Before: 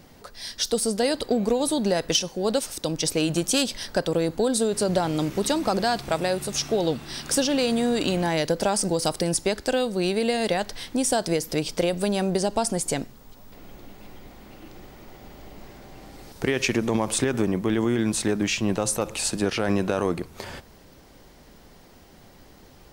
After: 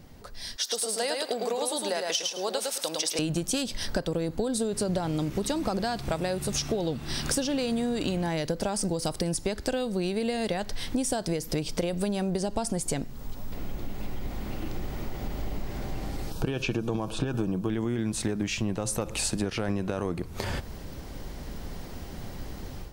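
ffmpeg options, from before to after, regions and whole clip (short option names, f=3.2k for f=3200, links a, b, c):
-filter_complex "[0:a]asettb=1/sr,asplit=3[a][b][c];[a]atrim=end=0.564[d];[b]atrim=start=0.56:end=3.19,asetpts=PTS-STARTPTS,afade=t=in:d=0.004:c=qsin,afade=t=out:st=2.626:d=0.004:c=qsin,highpass=650,aecho=1:1:106|212|318:0.631|0.101|0.0162,atrim=end_sample=115983[e];[c]atrim=start=3.186[f];[d][e]acrossfade=d=0.004:c1=hsin:c2=qsin[g];[g][f]acrossfade=d=0.004:c1=qsin:c2=hsin,asettb=1/sr,asplit=3[h][i][j];[h]atrim=end=16.304[k];[i]atrim=start=16.3:end=17.7,asetpts=PTS-STARTPTS,afade=t=in:d=0.004:c=qsin,afade=t=out:st=1.396:d=0.004:c=qsin,acrossover=split=4200[l][m];[m]acompressor=threshold=-44dB:ratio=4:attack=1:release=60[n];[l][n]amix=inputs=2:normalize=0,asuperstop=centerf=2000:order=4:qfactor=3,aecho=1:1:6.3:0.34,atrim=end_sample=61740[o];[j]atrim=start=17.696[p];[k][o]acrossfade=d=0.004:c1=hsin:c2=qsin[q];[q][p]acrossfade=d=0.004:c1=qsin:c2=hsin,dynaudnorm=f=530:g=3:m=11.5dB,lowshelf=f=160:g=10.5,acompressor=threshold=-22dB:ratio=5,volume=-4.5dB"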